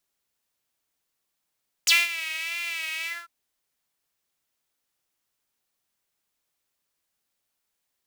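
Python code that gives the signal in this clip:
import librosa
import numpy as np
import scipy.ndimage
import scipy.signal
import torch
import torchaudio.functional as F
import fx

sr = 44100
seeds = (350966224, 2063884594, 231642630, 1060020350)

y = fx.sub_patch_vibrato(sr, seeds[0], note=76, wave='saw', wave2='saw', interval_st=0, detune_cents=16, level2_db=-9.0, sub_db=-1.5, noise_db=-12.5, kind='highpass', cutoff_hz=1300.0, q=6.2, env_oct=2.5, env_decay_s=0.05, env_sustain_pct=35, attack_ms=6.3, decay_s=0.2, sustain_db=-16.0, release_s=0.21, note_s=1.19, lfo_hz=1.7, vibrato_cents=64)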